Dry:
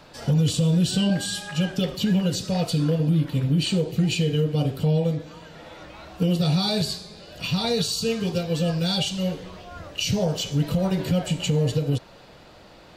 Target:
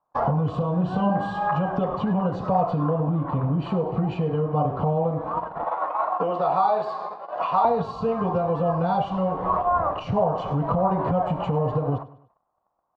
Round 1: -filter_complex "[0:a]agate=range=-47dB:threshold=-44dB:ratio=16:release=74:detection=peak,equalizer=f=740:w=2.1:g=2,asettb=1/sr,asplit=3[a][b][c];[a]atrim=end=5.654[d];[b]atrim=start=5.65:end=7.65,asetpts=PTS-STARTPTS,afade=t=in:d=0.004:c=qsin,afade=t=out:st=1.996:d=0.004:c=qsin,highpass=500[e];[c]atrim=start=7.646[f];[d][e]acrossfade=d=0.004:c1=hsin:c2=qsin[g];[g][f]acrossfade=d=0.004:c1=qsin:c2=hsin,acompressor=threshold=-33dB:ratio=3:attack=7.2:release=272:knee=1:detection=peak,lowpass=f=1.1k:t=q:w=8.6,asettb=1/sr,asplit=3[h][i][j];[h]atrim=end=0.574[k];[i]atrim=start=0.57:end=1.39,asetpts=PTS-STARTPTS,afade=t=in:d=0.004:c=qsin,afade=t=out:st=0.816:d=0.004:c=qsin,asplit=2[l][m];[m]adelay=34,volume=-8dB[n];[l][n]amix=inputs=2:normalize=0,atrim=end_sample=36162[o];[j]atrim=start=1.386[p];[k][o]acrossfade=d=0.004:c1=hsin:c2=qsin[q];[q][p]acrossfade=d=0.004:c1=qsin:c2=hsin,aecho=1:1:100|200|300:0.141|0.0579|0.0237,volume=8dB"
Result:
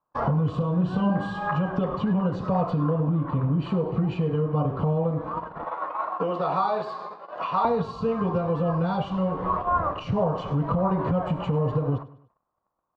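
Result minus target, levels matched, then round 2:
1000 Hz band -2.5 dB
-filter_complex "[0:a]agate=range=-47dB:threshold=-44dB:ratio=16:release=74:detection=peak,equalizer=f=740:w=2.1:g=12,asettb=1/sr,asplit=3[a][b][c];[a]atrim=end=5.654[d];[b]atrim=start=5.65:end=7.65,asetpts=PTS-STARTPTS,afade=t=in:d=0.004:c=qsin,afade=t=out:st=1.996:d=0.004:c=qsin,highpass=500[e];[c]atrim=start=7.646[f];[d][e]acrossfade=d=0.004:c1=hsin:c2=qsin[g];[g][f]acrossfade=d=0.004:c1=qsin:c2=hsin,acompressor=threshold=-33dB:ratio=3:attack=7.2:release=272:knee=1:detection=peak,lowpass=f=1.1k:t=q:w=8.6,asettb=1/sr,asplit=3[h][i][j];[h]atrim=end=0.574[k];[i]atrim=start=0.57:end=1.39,asetpts=PTS-STARTPTS,afade=t=in:d=0.004:c=qsin,afade=t=out:st=0.816:d=0.004:c=qsin,asplit=2[l][m];[m]adelay=34,volume=-8dB[n];[l][n]amix=inputs=2:normalize=0,atrim=end_sample=36162[o];[j]atrim=start=1.386[p];[k][o]acrossfade=d=0.004:c1=hsin:c2=qsin[q];[q][p]acrossfade=d=0.004:c1=qsin:c2=hsin,aecho=1:1:100|200|300:0.141|0.0579|0.0237,volume=8dB"

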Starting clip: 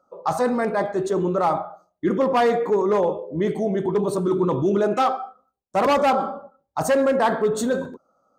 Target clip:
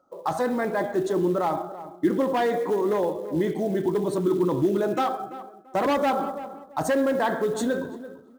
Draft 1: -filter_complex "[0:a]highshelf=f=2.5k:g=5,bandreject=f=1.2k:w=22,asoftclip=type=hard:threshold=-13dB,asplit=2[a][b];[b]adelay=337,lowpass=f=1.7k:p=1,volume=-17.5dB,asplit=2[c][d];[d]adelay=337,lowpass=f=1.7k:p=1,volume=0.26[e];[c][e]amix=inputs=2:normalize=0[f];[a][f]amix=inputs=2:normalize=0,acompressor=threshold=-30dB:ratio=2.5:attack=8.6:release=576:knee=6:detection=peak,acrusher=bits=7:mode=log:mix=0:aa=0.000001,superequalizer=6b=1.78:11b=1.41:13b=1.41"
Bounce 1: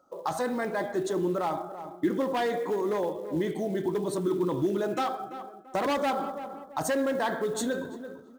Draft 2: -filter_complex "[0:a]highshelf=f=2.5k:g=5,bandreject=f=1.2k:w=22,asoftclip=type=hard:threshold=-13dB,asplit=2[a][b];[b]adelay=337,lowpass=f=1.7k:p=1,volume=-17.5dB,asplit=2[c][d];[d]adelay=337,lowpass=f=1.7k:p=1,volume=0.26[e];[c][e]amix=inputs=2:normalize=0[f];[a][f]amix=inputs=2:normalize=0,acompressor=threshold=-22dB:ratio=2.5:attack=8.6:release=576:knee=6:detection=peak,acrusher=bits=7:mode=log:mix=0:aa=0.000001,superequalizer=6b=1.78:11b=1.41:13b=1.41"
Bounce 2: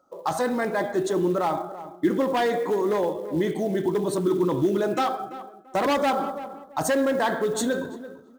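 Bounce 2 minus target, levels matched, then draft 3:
4000 Hz band +4.0 dB
-filter_complex "[0:a]highshelf=f=2.5k:g=-2.5,bandreject=f=1.2k:w=22,asoftclip=type=hard:threshold=-13dB,asplit=2[a][b];[b]adelay=337,lowpass=f=1.7k:p=1,volume=-17.5dB,asplit=2[c][d];[d]adelay=337,lowpass=f=1.7k:p=1,volume=0.26[e];[c][e]amix=inputs=2:normalize=0[f];[a][f]amix=inputs=2:normalize=0,acompressor=threshold=-22dB:ratio=2.5:attack=8.6:release=576:knee=6:detection=peak,acrusher=bits=7:mode=log:mix=0:aa=0.000001,superequalizer=6b=1.78:11b=1.41:13b=1.41"

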